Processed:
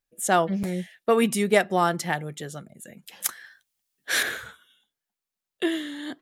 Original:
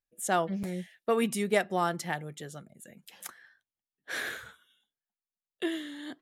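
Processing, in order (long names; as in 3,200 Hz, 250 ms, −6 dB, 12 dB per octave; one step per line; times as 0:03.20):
0:03.24–0:04.23: high-shelf EQ 2,500 Hz +11 dB
level +6.5 dB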